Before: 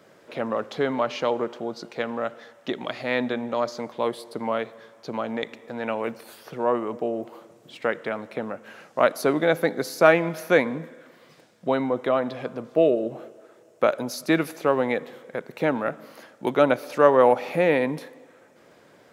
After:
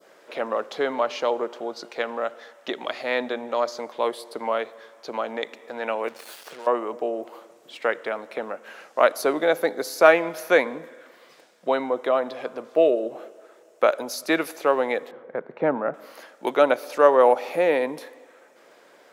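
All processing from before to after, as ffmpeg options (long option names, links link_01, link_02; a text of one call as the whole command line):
ffmpeg -i in.wav -filter_complex "[0:a]asettb=1/sr,asplit=3[link_01][link_02][link_03];[link_01]atrim=end=6.084[link_04];[link_02]atrim=start=6.08:end=6.67,asetpts=PTS-STARTPTS,afade=type=in:duration=0.004:curve=qsin,afade=type=out:start_time=0.586:duration=0.004:curve=qsin,equalizer=frequency=3200:width_type=o:width=2.3:gain=4,acompressor=threshold=-37dB:ratio=5:attack=3.2:release=140:knee=1:detection=peak,acrusher=bits=6:mix=0:aa=0.5[link_05];[link_03]atrim=start=6.666[link_06];[link_04][link_05]acrossfade=duration=0.004:curve1=hsin:curve2=qsin[link_07];[link_07][link_06]acrossfade=duration=0.004:curve1=qsin:curve2=hsin,asettb=1/sr,asplit=3[link_08][link_09][link_10];[link_08]atrim=end=15.114[link_11];[link_09]atrim=start=15.11:end=15.94,asetpts=PTS-STARTPTS,afade=type=in:duration=0.004:curve=qsin,afade=type=out:start_time=0.826:duration=0.004:curve=qsin,lowpass=1400,equalizer=frequency=140:width=1.1:gain=10.5[link_12];[link_10]atrim=start=15.936[link_13];[link_11][link_12]acrossfade=duration=0.004:curve1=hsin:curve2=qsin[link_14];[link_14][link_13]acrossfade=duration=0.004:curve1=qsin:curve2=hsin,highpass=400,adynamicequalizer=threshold=0.0112:dfrequency=2100:dqfactor=0.7:tfrequency=2100:tqfactor=0.7:attack=5:release=100:ratio=0.375:range=2.5:mode=cutabove:tftype=bell,volume=2.5dB" out.wav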